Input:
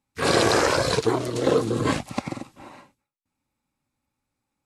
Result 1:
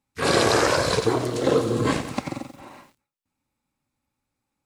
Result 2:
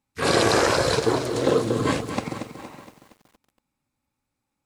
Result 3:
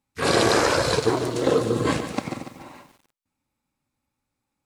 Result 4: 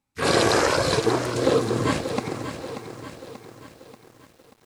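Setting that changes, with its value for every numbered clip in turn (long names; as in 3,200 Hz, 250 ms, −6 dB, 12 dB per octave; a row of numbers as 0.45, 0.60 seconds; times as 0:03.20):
feedback echo at a low word length, delay time: 89, 233, 145, 585 milliseconds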